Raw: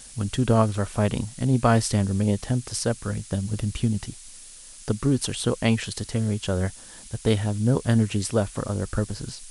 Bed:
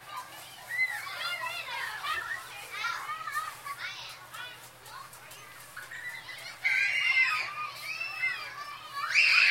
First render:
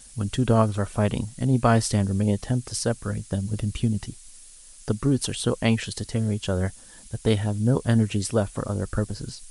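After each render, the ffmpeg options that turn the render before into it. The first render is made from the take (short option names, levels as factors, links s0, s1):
-af "afftdn=nr=6:nf=-45"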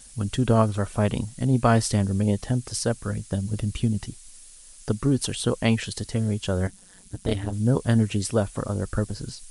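-filter_complex "[0:a]asettb=1/sr,asplit=3[s0][s1][s2];[s0]atrim=end=6.674[s3];[s1]atrim=start=6.67:end=7.53,asetpts=PTS-STARTPTS,afade=t=in:d=0.004:c=qsin,afade=t=out:st=0.856:d=0.004:c=qsin,tremolo=f=190:d=0.947[s4];[s2]atrim=start=7.526[s5];[s3][s4]acrossfade=d=0.004:c1=hsin:c2=qsin[s6];[s6][s5]acrossfade=d=0.004:c1=qsin:c2=hsin"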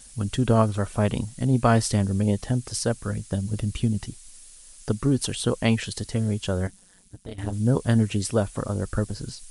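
-filter_complex "[0:a]asplit=2[s0][s1];[s0]atrim=end=7.38,asetpts=PTS-STARTPTS,afade=t=out:st=6.45:d=0.93:silence=0.158489[s2];[s1]atrim=start=7.38,asetpts=PTS-STARTPTS,afade=t=in:d=0.004:c=hsin:silence=0.158489[s3];[s2][s3]concat=n=2:v=0:a=1"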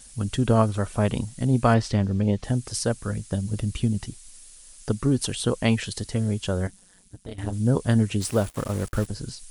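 -filter_complex "[0:a]asettb=1/sr,asplit=3[s0][s1][s2];[s0]atrim=end=1.744[s3];[s1]atrim=start=1.74:end=2.44,asetpts=PTS-STARTPTS,afade=t=in:d=0.004:c=qsin,afade=t=out:st=0.696:d=0.004:c=qsin,lowpass=4400[s4];[s2]atrim=start=2.436[s5];[s3][s4]acrossfade=d=0.004:c1=hsin:c2=qsin[s6];[s6][s5]acrossfade=d=0.004:c1=qsin:c2=hsin,asplit=3[s7][s8][s9];[s7]afade=t=out:st=8.2:d=0.02[s10];[s8]acrusher=bits=5:mix=0:aa=0.5,afade=t=in:st=8.2:d=0.02,afade=t=out:st=9.06:d=0.02[s11];[s9]afade=t=in:st=9.06:d=0.02[s12];[s10][s11][s12]amix=inputs=3:normalize=0"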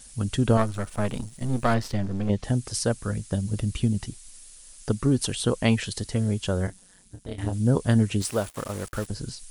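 -filter_complex "[0:a]asettb=1/sr,asplit=3[s0][s1][s2];[s0]atrim=end=0.574[s3];[s1]atrim=start=0.57:end=2.3,asetpts=PTS-STARTPTS,afade=t=in:d=0.004:c=qsin,afade=t=out:st=1.726:d=0.004:c=qsin,aeval=exprs='if(lt(val(0),0),0.251*val(0),val(0))':c=same[s4];[s2]atrim=start=2.296[s5];[s3][s4]acrossfade=d=0.004:c1=hsin:c2=qsin[s6];[s6][s5]acrossfade=d=0.004:c1=qsin:c2=hsin,asettb=1/sr,asplit=3[s7][s8][s9];[s7]atrim=end=6.654[s10];[s8]atrim=start=6.65:end=7.54,asetpts=PTS-STARTPTS,afade=t=in:d=0.004:c=qsin,afade=t=out:st=0.886:d=0.004:c=qsin,asplit=2[s11][s12];[s12]adelay=27,volume=0.447[s13];[s11][s13]amix=inputs=2:normalize=0,atrim=end_sample=39249[s14];[s9]atrim=start=7.536[s15];[s10][s14]acrossfade=d=0.004:c1=hsin:c2=qsin[s16];[s16][s15]acrossfade=d=0.004:c1=qsin:c2=hsin,asettb=1/sr,asplit=3[s17][s18][s19];[s17]atrim=end=8.224[s20];[s18]atrim=start=8.22:end=9.1,asetpts=PTS-STARTPTS,afade=t=in:d=0.004:c=qsin,afade=t=out:st=0.876:d=0.004:c=qsin,lowshelf=f=360:g=-8[s21];[s19]atrim=start=9.096[s22];[s20][s21]acrossfade=d=0.004:c1=hsin:c2=qsin[s23];[s23][s22]acrossfade=d=0.004:c1=qsin:c2=hsin"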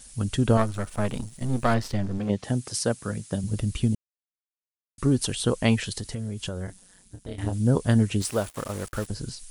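-filter_complex "[0:a]asettb=1/sr,asplit=3[s0][s1][s2];[s0]atrim=end=2.184[s3];[s1]atrim=start=2.18:end=3.44,asetpts=PTS-STARTPTS,afade=t=in:d=0.004:c=qsin,afade=t=out:st=1.256:d=0.004:c=qsin,highpass=120[s4];[s2]atrim=start=3.436[s5];[s3][s4]acrossfade=d=0.004:c1=hsin:c2=qsin[s6];[s6][s5]acrossfade=d=0.004:c1=qsin:c2=hsin,asettb=1/sr,asplit=3[s7][s8][s9];[s7]atrim=end=5.924[s10];[s8]atrim=start=5.92:end=7.41,asetpts=PTS-STARTPTS,afade=t=in:d=0.004:c=qsin,afade=t=out:st=1.486:d=0.004:c=qsin,acompressor=threshold=0.0447:ratio=10:attack=3.2:release=140:knee=1:detection=peak[s11];[s9]atrim=start=7.406[s12];[s10][s11]acrossfade=d=0.004:c1=hsin:c2=qsin[s13];[s13][s12]acrossfade=d=0.004:c1=qsin:c2=hsin,asplit=3[s14][s15][s16];[s14]atrim=end=3.95,asetpts=PTS-STARTPTS,afade=t=out:st=3.946:d=0.004:c=hsin[s17];[s15]atrim=start=3.95:end=4.98,asetpts=PTS-STARTPTS,volume=0[s18];[s16]atrim=start=4.98,asetpts=PTS-STARTPTS,afade=t=in:d=0.004:c=hsin[s19];[s17][s18][s19]concat=n=3:v=0:a=1"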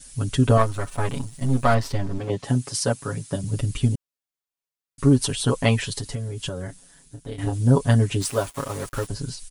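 -af "adynamicequalizer=threshold=0.00447:dfrequency=1000:dqfactor=4.5:tfrequency=1000:tqfactor=4.5:attack=5:release=100:ratio=0.375:range=2.5:mode=boostabove:tftype=bell,aecho=1:1:7.2:0.94"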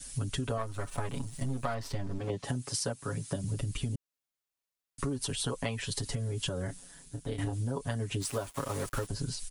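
-filter_complex "[0:a]acrossover=split=370|460|2800[s0][s1][s2][s3];[s0]alimiter=limit=0.133:level=0:latency=1[s4];[s4][s1][s2][s3]amix=inputs=4:normalize=0,acompressor=threshold=0.0316:ratio=10"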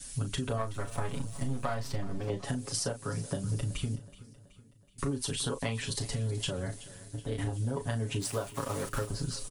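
-filter_complex "[0:a]asplit=2[s0][s1];[s1]adelay=36,volume=0.335[s2];[s0][s2]amix=inputs=2:normalize=0,aecho=1:1:375|750|1125|1500:0.126|0.0667|0.0354|0.0187"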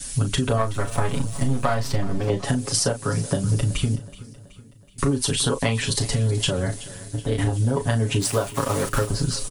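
-af "volume=3.55"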